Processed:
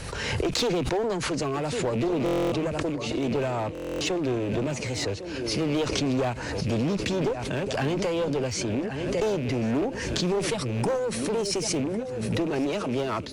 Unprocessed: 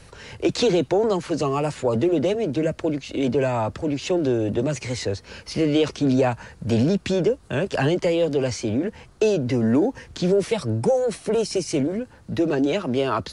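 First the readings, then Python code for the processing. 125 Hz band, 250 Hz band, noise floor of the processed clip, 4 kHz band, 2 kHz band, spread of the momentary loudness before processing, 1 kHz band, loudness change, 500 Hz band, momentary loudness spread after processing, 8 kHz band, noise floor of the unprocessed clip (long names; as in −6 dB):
−3.5 dB, −5.0 dB, −34 dBFS, +0.5 dB, −0.5 dB, 6 LU, −3.0 dB, −4.5 dB, −5.5 dB, 4 LU, +2.0 dB, −50 dBFS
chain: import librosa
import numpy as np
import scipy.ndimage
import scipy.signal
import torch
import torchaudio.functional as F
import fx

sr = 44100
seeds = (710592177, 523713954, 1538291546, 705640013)

p1 = fx.rattle_buzz(x, sr, strikes_db=-25.0, level_db=-28.0)
p2 = p1 + fx.echo_swing(p1, sr, ms=1471, ratio=3, feedback_pct=33, wet_db=-14.5, dry=0)
p3 = fx.clip_asym(p2, sr, top_db=-22.5, bottom_db=-13.5)
p4 = fx.buffer_glitch(p3, sr, at_s=(2.24, 3.73), block=1024, repeats=11)
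p5 = fx.pre_swell(p4, sr, db_per_s=30.0)
y = p5 * librosa.db_to_amplitude(-4.5)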